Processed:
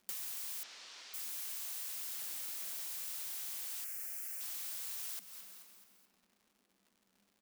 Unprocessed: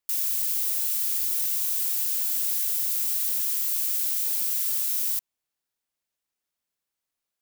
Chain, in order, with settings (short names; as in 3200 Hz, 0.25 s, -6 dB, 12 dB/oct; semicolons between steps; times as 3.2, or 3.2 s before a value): tilt -3.5 dB/oct; frequency shift +180 Hz; feedback echo 0.216 s, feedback 51%, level -20 dB; reverb RT60 3.0 s, pre-delay 46 ms, DRR 17 dB; compressor 12:1, threshold -48 dBFS, peak gain reduction 12.5 dB; 0.63–1.14 LPF 5400 Hz 24 dB/oct; soft clip -39 dBFS, distortion -27 dB; 2.21–2.88 low shelf 360 Hz +10 dB; 3.84–4.41 fixed phaser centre 1000 Hz, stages 6; crackle 230/s -68 dBFS; gain +9.5 dB